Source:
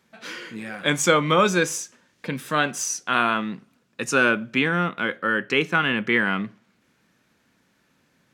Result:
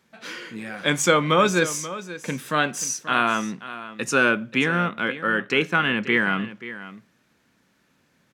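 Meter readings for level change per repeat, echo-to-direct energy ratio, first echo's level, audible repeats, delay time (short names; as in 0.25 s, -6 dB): no steady repeat, -14.5 dB, -14.5 dB, 1, 0.533 s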